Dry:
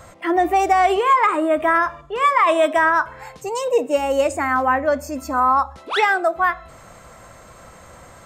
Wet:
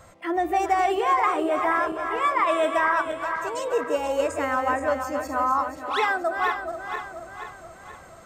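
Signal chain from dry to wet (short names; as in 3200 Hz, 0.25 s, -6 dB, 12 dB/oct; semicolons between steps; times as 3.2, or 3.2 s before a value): regenerating reverse delay 0.24 s, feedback 70%, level -7 dB; gain -7 dB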